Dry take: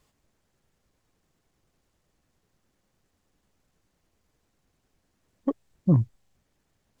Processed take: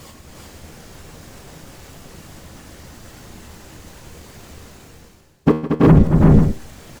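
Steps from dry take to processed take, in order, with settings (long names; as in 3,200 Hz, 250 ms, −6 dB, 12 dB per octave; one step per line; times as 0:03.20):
in parallel at −2 dB: downward compressor, threshold −27 dBFS, peak gain reduction 12 dB
on the sum: leveller curve on the samples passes 3
reversed playback
upward compression, threshold −29 dBFS
reversed playback
random phases in short frames
tuned comb filter 78 Hz, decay 0.45 s, harmonics all, mix 60%
multi-tap delay 159/230/329/352/367/490 ms −19.5/−11.5/−8/−9.5/−3.5/−12.5 dB
boost into a limiter +14 dB
level −1 dB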